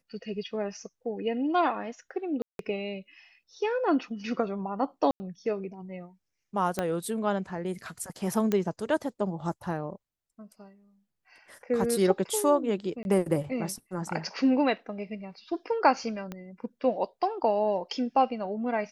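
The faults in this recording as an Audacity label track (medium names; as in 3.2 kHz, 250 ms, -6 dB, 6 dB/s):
2.420000	2.590000	dropout 172 ms
5.110000	5.200000	dropout 90 ms
6.790000	6.790000	pop -14 dBFS
8.520000	8.520000	pop -14 dBFS
13.030000	13.050000	dropout 21 ms
16.320000	16.320000	pop -23 dBFS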